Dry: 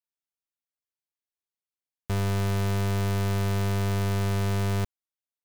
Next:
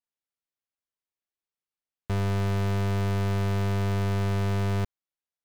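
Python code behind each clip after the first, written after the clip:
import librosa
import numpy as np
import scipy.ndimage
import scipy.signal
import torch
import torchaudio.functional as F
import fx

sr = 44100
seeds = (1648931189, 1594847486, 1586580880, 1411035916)

y = fx.high_shelf(x, sr, hz=5800.0, db=-10.0)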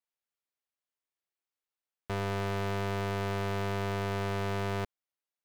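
y = fx.bass_treble(x, sr, bass_db=-10, treble_db=-4)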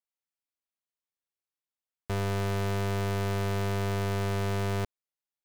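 y = fx.leveller(x, sr, passes=2)
y = F.gain(torch.from_numpy(y), -1.0).numpy()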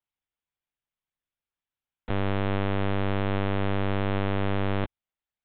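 y = fx.lpc_vocoder(x, sr, seeds[0], excitation='pitch_kept', order=10)
y = F.gain(torch.from_numpy(y), 3.5).numpy()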